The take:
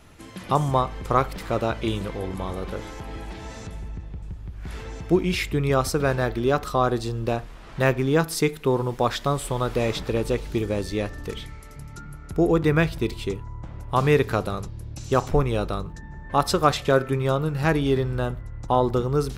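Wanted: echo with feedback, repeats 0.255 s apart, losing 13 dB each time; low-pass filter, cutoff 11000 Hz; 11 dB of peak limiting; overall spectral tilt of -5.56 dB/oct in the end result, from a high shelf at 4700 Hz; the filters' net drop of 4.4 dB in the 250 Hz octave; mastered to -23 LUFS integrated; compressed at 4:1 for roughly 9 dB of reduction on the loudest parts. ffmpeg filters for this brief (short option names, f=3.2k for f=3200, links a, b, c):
-af "lowpass=11k,equalizer=f=250:t=o:g=-7,highshelf=f=4.7k:g=-3.5,acompressor=threshold=-26dB:ratio=4,alimiter=level_in=0.5dB:limit=-24dB:level=0:latency=1,volume=-0.5dB,aecho=1:1:255|510|765:0.224|0.0493|0.0108,volume=12dB"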